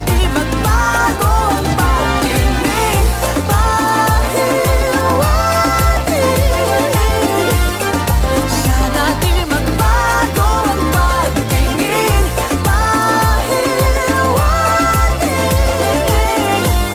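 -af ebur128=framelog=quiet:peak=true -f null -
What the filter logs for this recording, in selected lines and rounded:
Integrated loudness:
  I:         -13.8 LUFS
  Threshold: -23.8 LUFS
Loudness range:
  LRA:         0.9 LU
  Threshold: -33.8 LUFS
  LRA low:   -14.2 LUFS
  LRA high:  -13.3 LUFS
True peak:
  Peak:       -2.9 dBFS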